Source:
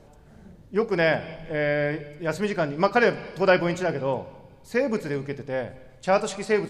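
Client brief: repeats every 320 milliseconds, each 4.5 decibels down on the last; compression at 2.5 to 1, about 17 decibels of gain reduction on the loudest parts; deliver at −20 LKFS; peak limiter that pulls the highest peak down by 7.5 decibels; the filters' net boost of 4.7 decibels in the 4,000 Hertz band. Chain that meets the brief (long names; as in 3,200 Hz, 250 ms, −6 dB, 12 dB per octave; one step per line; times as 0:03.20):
parametric band 4,000 Hz +6.5 dB
downward compressor 2.5 to 1, threshold −41 dBFS
brickwall limiter −29.5 dBFS
repeating echo 320 ms, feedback 60%, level −4.5 dB
level +19 dB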